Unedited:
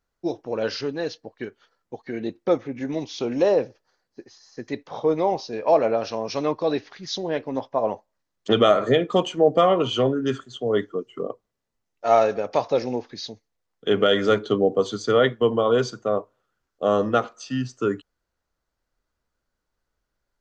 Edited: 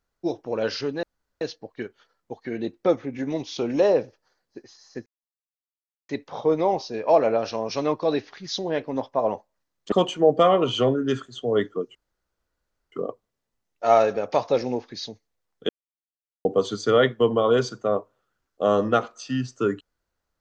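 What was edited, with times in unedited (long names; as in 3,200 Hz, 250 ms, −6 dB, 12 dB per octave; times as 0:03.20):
0:01.03: splice in room tone 0.38 s
0:04.68: splice in silence 1.03 s
0:08.51–0:09.10: remove
0:11.13: splice in room tone 0.97 s
0:13.90–0:14.66: silence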